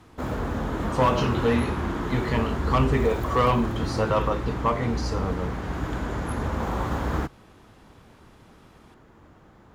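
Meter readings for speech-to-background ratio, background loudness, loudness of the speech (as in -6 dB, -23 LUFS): 3.5 dB, -29.5 LUFS, -26.0 LUFS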